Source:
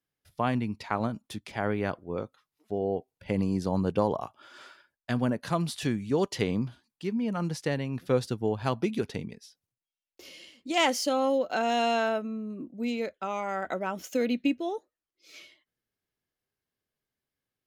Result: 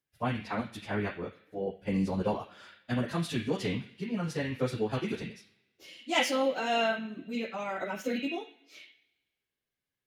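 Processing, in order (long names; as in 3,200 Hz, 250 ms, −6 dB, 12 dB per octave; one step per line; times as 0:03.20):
on a send at −14 dB: flat-topped bell 2,500 Hz +16 dB + convolution reverb, pre-delay 44 ms
on the sum: time stretch by phase vocoder 0.57×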